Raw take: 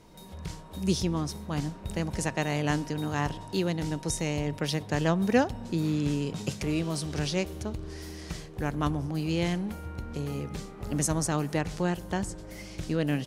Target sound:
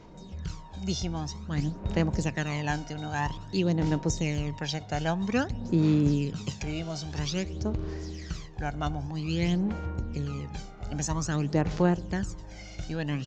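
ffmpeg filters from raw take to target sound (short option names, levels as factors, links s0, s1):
-af "aresample=16000,aresample=44100,aphaser=in_gain=1:out_gain=1:delay=1.4:decay=0.61:speed=0.51:type=sinusoidal,volume=0.708"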